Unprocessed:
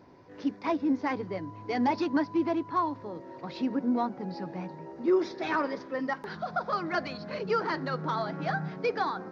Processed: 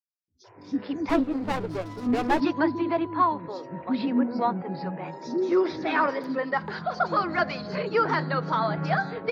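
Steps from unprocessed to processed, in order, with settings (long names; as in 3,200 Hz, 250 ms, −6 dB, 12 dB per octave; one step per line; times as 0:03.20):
three-band delay without the direct sound highs, lows, mids 280/440 ms, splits 320/5,100 Hz
noise reduction from a noise print of the clip's start 29 dB
0:01.09–0:02.40: windowed peak hold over 17 samples
level +6 dB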